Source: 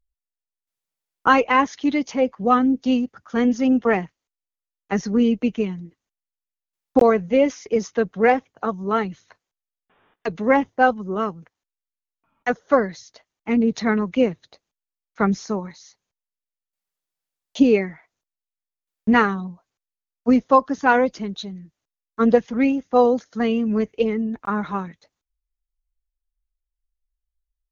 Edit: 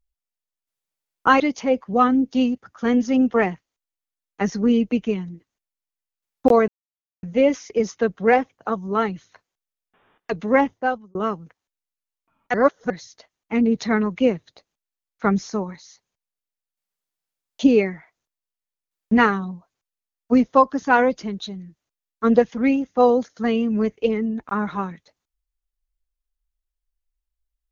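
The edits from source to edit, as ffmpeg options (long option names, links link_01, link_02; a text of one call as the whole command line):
ffmpeg -i in.wav -filter_complex "[0:a]asplit=6[link_01][link_02][link_03][link_04][link_05][link_06];[link_01]atrim=end=1.402[link_07];[link_02]atrim=start=1.908:end=7.19,asetpts=PTS-STARTPTS,afade=type=out:start_time=5.278:duration=0.004:curve=hsin,apad=pad_dur=0.55[link_08];[link_03]atrim=start=7.19:end=11.11,asetpts=PTS-STARTPTS,afade=type=in:duration=0.004:curve=hsin,afade=type=out:start_time=3.38:duration=0.54[link_09];[link_04]atrim=start=11.11:end=12.502,asetpts=PTS-STARTPTS,afade=type=in:duration=0.004:curve=hsin[link_10];[link_05]atrim=start=12.498:end=12.862,asetpts=PTS-STARTPTS,areverse[link_11];[link_06]atrim=start=12.858[link_12];[link_08][link_09][link_10]concat=n=3:v=0:a=1[link_13];[link_07][link_13]acrossfade=duration=0.004:curve1=hsin:curve2=hsin[link_14];[link_14][link_11]acrossfade=duration=0.004:curve1=hsin:curve2=hsin[link_15];[link_15][link_12]acrossfade=duration=0.004:curve1=hsin:curve2=hsin" out.wav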